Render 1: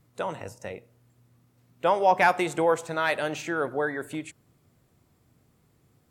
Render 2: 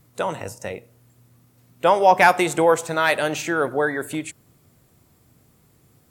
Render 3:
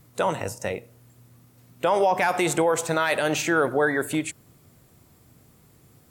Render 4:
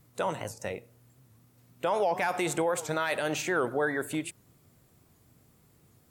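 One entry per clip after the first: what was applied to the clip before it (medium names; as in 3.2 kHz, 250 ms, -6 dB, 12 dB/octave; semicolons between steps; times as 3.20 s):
treble shelf 7 kHz +8 dB; trim +6 dB
peak limiter -14 dBFS, peak gain reduction 12 dB; trim +2 dB
warped record 78 rpm, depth 160 cents; trim -6.5 dB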